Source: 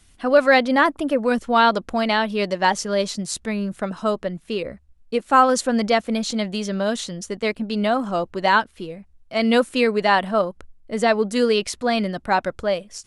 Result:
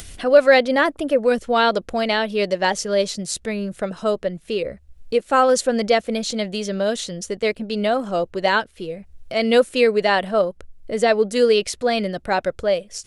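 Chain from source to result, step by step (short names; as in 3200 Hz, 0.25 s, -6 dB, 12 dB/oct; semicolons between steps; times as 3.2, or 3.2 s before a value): upward compressor, threshold -26 dBFS; graphic EQ 250/500/1000 Hz -5/+5/-7 dB; gain +1.5 dB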